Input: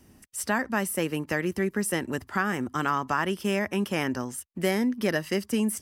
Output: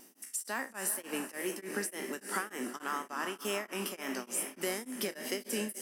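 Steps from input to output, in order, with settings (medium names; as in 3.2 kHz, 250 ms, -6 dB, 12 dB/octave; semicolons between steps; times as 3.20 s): spectral sustain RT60 0.31 s; high-pass 250 Hz 24 dB/octave; treble shelf 5.1 kHz +11 dB; compression 4:1, threshold -32 dBFS, peak gain reduction 12.5 dB; echo that smears into a reverb 464 ms, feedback 41%, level -7.5 dB; wow and flutter 43 cents; tremolo of two beating tones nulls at 3.4 Hz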